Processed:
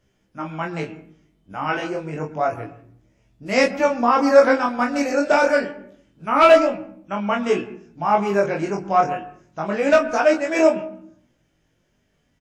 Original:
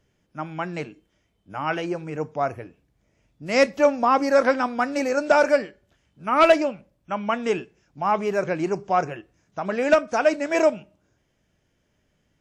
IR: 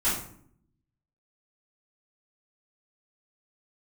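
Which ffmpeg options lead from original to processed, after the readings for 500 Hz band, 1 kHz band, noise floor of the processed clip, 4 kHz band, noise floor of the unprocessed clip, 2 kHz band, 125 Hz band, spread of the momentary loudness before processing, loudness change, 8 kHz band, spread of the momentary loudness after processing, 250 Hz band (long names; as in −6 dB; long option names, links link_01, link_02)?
+3.0 dB, +3.0 dB, −67 dBFS, +2.5 dB, −70 dBFS, +3.0 dB, +3.0 dB, 17 LU, +3.0 dB, +2.5 dB, 18 LU, +3.5 dB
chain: -filter_complex "[0:a]asplit=2[link_01][link_02];[link_02]adelay=25,volume=-4dB[link_03];[link_01][link_03]amix=inputs=2:normalize=0,asplit=2[link_04][link_05];[1:a]atrim=start_sample=2205,lowpass=2400,adelay=102[link_06];[link_05][link_06]afir=irnorm=-1:irlink=0,volume=-25dB[link_07];[link_04][link_07]amix=inputs=2:normalize=0,flanger=delay=15.5:depth=5.6:speed=0.28,volume=4dB"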